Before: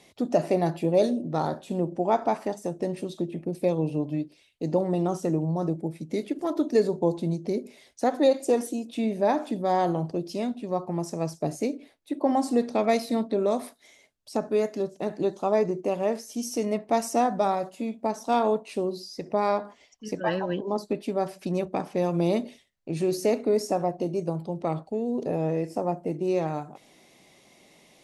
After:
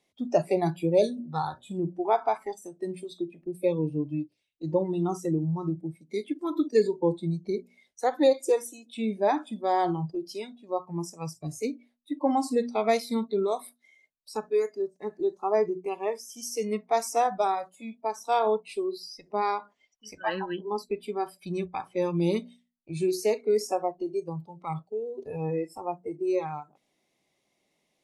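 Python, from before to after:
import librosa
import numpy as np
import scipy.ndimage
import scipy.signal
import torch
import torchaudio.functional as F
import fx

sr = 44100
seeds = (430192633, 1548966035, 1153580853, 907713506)

y = fx.peak_eq(x, sr, hz=3200.0, db=-11.5, octaves=0.51, at=(14.55, 15.65))
y = fx.peak_eq(y, sr, hz=3200.0, db=-8.5, octaves=0.42, at=(25.94, 26.4))
y = fx.noise_reduce_blind(y, sr, reduce_db=18)
y = fx.hum_notches(y, sr, base_hz=60, count=4)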